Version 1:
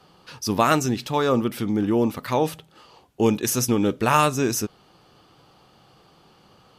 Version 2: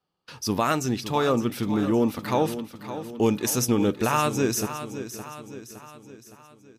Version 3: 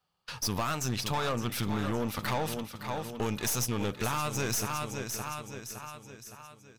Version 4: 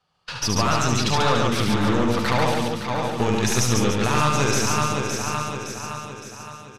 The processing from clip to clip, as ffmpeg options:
-filter_complex "[0:a]agate=range=0.0562:threshold=0.00447:ratio=16:detection=peak,alimiter=limit=0.316:level=0:latency=1:release=222,asplit=2[s0][s1];[s1]aecho=0:1:564|1128|1692|2256|2820:0.266|0.136|0.0692|0.0353|0.018[s2];[s0][s2]amix=inputs=2:normalize=0,volume=0.841"
-af "equalizer=f=310:w=1.1:g=-13,acompressor=threshold=0.0355:ratio=5,aeval=exprs='(tanh(39.8*val(0)+0.6)-tanh(0.6))/39.8':c=same,volume=2.11"
-filter_complex "[0:a]lowpass=6900,asplit=2[s0][s1];[s1]aecho=0:1:72.89|139.9|288.6:0.631|0.794|0.398[s2];[s0][s2]amix=inputs=2:normalize=0,volume=2.51"

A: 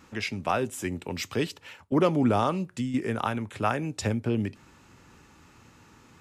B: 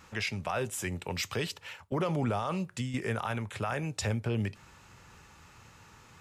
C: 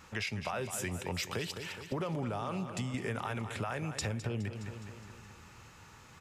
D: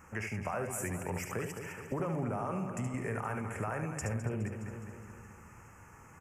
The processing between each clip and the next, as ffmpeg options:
-af "equalizer=f=280:t=o:w=0.92:g=-11,alimiter=limit=0.0668:level=0:latency=1:release=20,volume=1.19"
-filter_complex "[0:a]asplit=2[s0][s1];[s1]aecho=0:1:208|416|624|832|1040|1248:0.251|0.143|0.0816|0.0465|0.0265|0.0151[s2];[s0][s2]amix=inputs=2:normalize=0,acompressor=threshold=0.0251:ratio=6"
-filter_complex "[0:a]asuperstop=centerf=3900:order=4:qfactor=0.86,asplit=2[s0][s1];[s1]aecho=0:1:73|476:0.501|0.133[s2];[s0][s2]amix=inputs=2:normalize=0"

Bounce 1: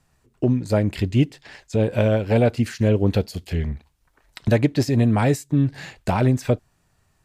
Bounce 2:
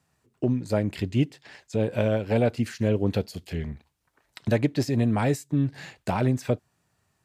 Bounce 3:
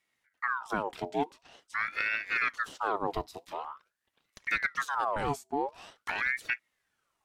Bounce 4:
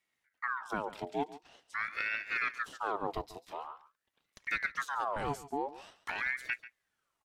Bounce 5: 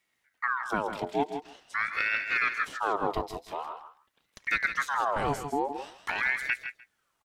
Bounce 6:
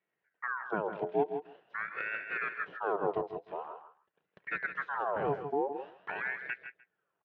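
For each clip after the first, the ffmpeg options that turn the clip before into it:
-af "highpass=96,volume=0.596"
-af "aeval=exprs='val(0)*sin(2*PI*1300*n/s+1300*0.6/0.46*sin(2*PI*0.46*n/s))':c=same,volume=0.562"
-af "aecho=1:1:140:0.158,volume=0.631"
-af "aecho=1:1:161:0.335,volume=2"
-af "highpass=170,equalizer=f=170:t=q:w=4:g=5,equalizer=f=250:t=q:w=4:g=-10,equalizer=f=430:t=q:w=4:g=5,equalizer=f=870:t=q:w=4:g=-4,equalizer=f=1200:t=q:w=4:g=-7,equalizer=f=2100:t=q:w=4:g=-10,lowpass=f=2200:w=0.5412,lowpass=f=2200:w=1.3066,volume=0.841"

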